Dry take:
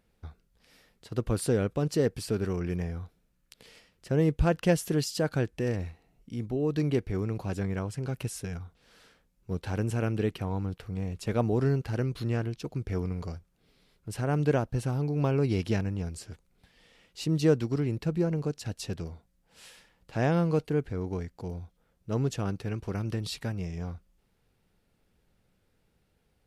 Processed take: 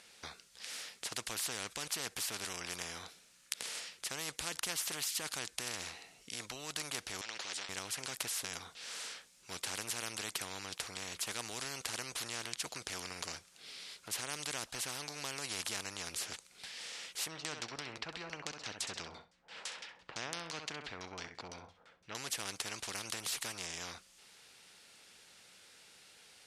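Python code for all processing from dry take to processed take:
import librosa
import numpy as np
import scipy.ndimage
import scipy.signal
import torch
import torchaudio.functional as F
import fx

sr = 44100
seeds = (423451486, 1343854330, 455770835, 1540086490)

y = fx.chain(x, sr, fx.vowel_filter(vowel='e'),
    fx.air_absorb(metres=51.0),
    fx.spectral_comp(ratio=10.0), at=(7.21, 7.69))
y = fx.chain(y, sr, fx.filter_lfo_lowpass(shape='saw_down', hz=5.9, low_hz=620.0, high_hz=6300.0, q=0.94),
    fx.peak_eq(hz=5500.0, db=-4.5, octaves=2.4),
    fx.room_flutter(wall_m=11.2, rt60_s=0.27), at=(17.28, 22.15))
y = fx.weighting(y, sr, curve='ITU-R 468')
y = fx.spectral_comp(y, sr, ratio=4.0)
y = y * 10.0 ** (-1.0 / 20.0)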